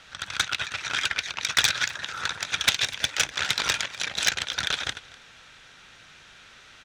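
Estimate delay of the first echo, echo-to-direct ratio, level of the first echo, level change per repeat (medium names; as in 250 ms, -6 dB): 248 ms, -21.5 dB, -21.5 dB, -13.0 dB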